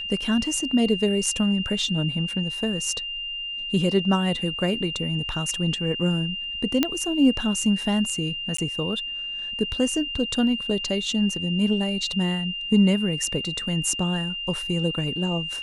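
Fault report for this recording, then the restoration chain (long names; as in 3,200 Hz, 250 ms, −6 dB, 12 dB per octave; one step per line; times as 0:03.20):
whistle 2,800 Hz −29 dBFS
0:06.83: click −6 dBFS
0:08.57–0:08.58: drop-out 14 ms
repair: click removal
notch filter 2,800 Hz, Q 30
repair the gap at 0:08.57, 14 ms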